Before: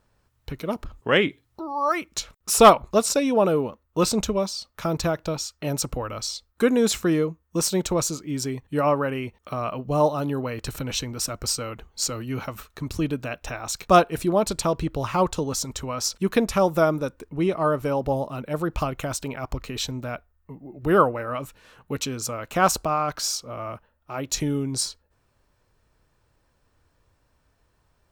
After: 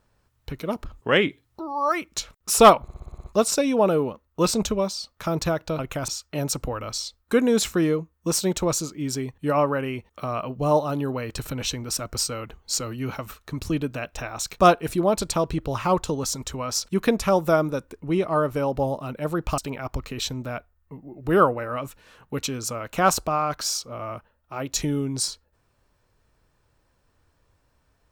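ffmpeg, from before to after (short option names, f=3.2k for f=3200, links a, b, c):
-filter_complex "[0:a]asplit=11[a][b][c][d][e][f][g][h][i][j][k];[a]atrim=end=2.882[l];[b]atrim=start=2.818:end=2.882[m];[c]atrim=start=2.818:end=2.882[n];[d]atrim=start=2.818:end=2.882[o];[e]atrim=start=2.818:end=2.882[p];[f]atrim=start=2.818:end=2.882[q];[g]atrim=start=2.818:end=2.882[r];[h]atrim=start=2.818:end=5.372[s];[i]atrim=start=18.868:end=19.162[t];[j]atrim=start=5.368:end=18.872[u];[k]atrim=start=19.158[v];[l][m]acrossfade=d=0.004:c1=hsin:c2=hsin[w];[w][n]acrossfade=d=0.004:c1=hsin:c2=hsin[x];[x][o]acrossfade=d=0.004:c1=hsin:c2=hsin[y];[y][p]acrossfade=d=0.004:c1=hsin:c2=hsin[z];[z][q]acrossfade=d=0.004:c1=hsin:c2=hsin[aa];[aa][r]acrossfade=d=0.004:c1=hsin:c2=hsin[ab];[ab][s]acrossfade=d=0.004:c1=hsin:c2=hsin[ac];[ac][t]acrossfade=d=0.004:c1=hsin:c2=hsin[ad];[ad][u]acrossfade=d=0.004:c1=hsin:c2=hsin[ae];[ae][v]acrossfade=d=0.004:c1=hsin:c2=hsin"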